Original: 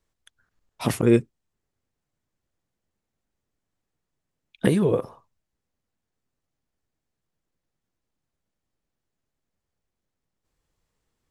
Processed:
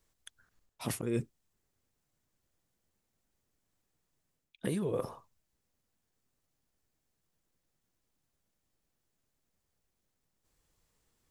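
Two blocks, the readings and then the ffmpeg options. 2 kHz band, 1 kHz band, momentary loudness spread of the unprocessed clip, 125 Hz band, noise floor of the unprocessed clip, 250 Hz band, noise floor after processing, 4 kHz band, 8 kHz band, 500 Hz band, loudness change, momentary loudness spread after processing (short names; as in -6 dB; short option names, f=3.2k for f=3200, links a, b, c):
-13.0 dB, -11.0 dB, 8 LU, -12.5 dB, -83 dBFS, -14.0 dB, -82 dBFS, -10.0 dB, -5.5 dB, -13.0 dB, -13.5 dB, 13 LU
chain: -af "highshelf=f=5.3k:g=7.5,areverse,acompressor=threshold=-33dB:ratio=4,areverse"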